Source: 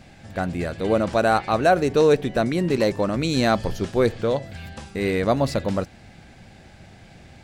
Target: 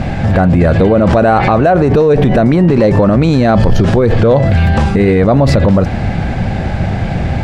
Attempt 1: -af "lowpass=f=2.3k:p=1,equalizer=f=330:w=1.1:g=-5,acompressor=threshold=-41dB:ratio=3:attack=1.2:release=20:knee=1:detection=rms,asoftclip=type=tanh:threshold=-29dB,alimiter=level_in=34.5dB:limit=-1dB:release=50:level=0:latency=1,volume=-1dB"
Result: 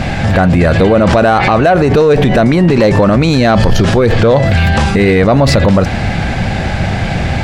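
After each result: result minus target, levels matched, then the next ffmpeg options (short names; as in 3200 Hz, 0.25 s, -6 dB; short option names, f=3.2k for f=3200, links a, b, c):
soft clip: distortion +14 dB; 2000 Hz band +4.5 dB
-af "lowpass=f=2.3k:p=1,equalizer=f=330:w=1.1:g=-5,acompressor=threshold=-41dB:ratio=3:attack=1.2:release=20:knee=1:detection=rms,asoftclip=type=tanh:threshold=-22dB,alimiter=level_in=34.5dB:limit=-1dB:release=50:level=0:latency=1,volume=-1dB"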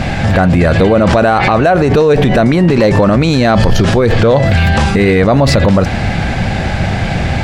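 2000 Hz band +5.0 dB
-af "lowpass=f=740:p=1,equalizer=f=330:w=1.1:g=-5,acompressor=threshold=-41dB:ratio=3:attack=1.2:release=20:knee=1:detection=rms,asoftclip=type=tanh:threshold=-22dB,alimiter=level_in=34.5dB:limit=-1dB:release=50:level=0:latency=1,volume=-1dB"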